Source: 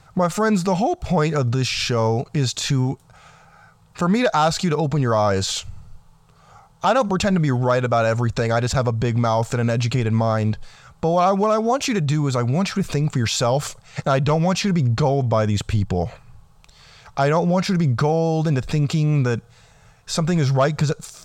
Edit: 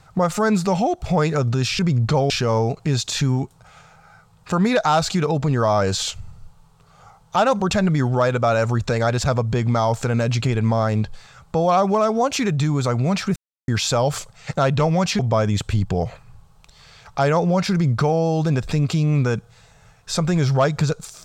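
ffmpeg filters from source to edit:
-filter_complex "[0:a]asplit=6[a][b][c][d][e][f];[a]atrim=end=1.792[g];[b]atrim=start=14.678:end=15.192[h];[c]atrim=start=1.788:end=12.85,asetpts=PTS-STARTPTS,afade=t=out:st=11.058:d=0.004:c=hsin[i];[d]atrim=start=12.85:end=13.17,asetpts=PTS-STARTPTS,volume=0[j];[e]atrim=start=13.17:end=14.682,asetpts=PTS-STARTPTS,afade=t=in:d=0.004:c=hsin[k];[f]atrim=start=15.188[l];[g][h]acrossfade=d=0.004:c1=hsin:c2=hsin[m];[i][j][k]concat=n=3:v=0:a=1[n];[m][n]acrossfade=d=0.004:c1=hsin:c2=hsin[o];[o][l]acrossfade=d=0.004:c1=hsin:c2=hsin"

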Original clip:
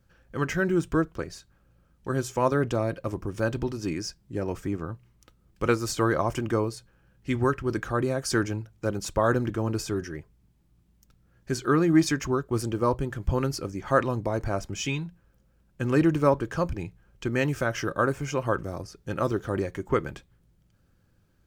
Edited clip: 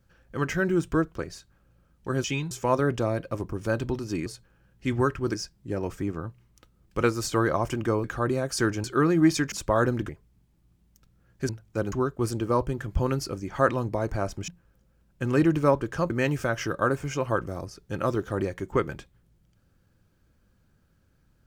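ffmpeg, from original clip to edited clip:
-filter_complex "[0:a]asplit=13[a][b][c][d][e][f][g][h][i][j][k][l][m];[a]atrim=end=2.242[n];[b]atrim=start=14.798:end=15.072[o];[c]atrim=start=2.238:end=3.992[p];[d]atrim=start=6.688:end=7.772[q];[e]atrim=start=3.988:end=6.692[r];[f]atrim=start=7.768:end=8.572[s];[g]atrim=start=11.558:end=12.242[t];[h]atrim=start=8.998:end=9.572[u];[i]atrim=start=10.158:end=11.562[v];[j]atrim=start=8.568:end=9.002[w];[k]atrim=start=12.238:end=14.802[x];[l]atrim=start=15.068:end=16.692[y];[m]atrim=start=17.268[z];[n][o]acrossfade=d=0.004:c1=hsin:c2=hsin[aa];[aa][p]acrossfade=d=0.004:c1=hsin:c2=hsin[ab];[ab][q]acrossfade=d=0.004:c1=hsin:c2=hsin[ac];[ac][r]acrossfade=d=0.004:c1=hsin:c2=hsin[ad];[ad][s]acrossfade=d=0.004:c1=hsin:c2=hsin[ae];[ae][t]acrossfade=d=0.004:c1=hsin:c2=hsin[af];[af][u]acrossfade=d=0.004:c1=hsin:c2=hsin[ag];[ag][v]acrossfade=d=0.004:c1=hsin:c2=hsin[ah];[ah][w]acrossfade=d=0.004:c1=hsin:c2=hsin[ai];[ai][x]acrossfade=d=0.004:c1=hsin:c2=hsin[aj];[aj][y]acrossfade=d=0.004:c1=hsin:c2=hsin[ak];[ak][z]acrossfade=d=0.004:c1=hsin:c2=hsin"

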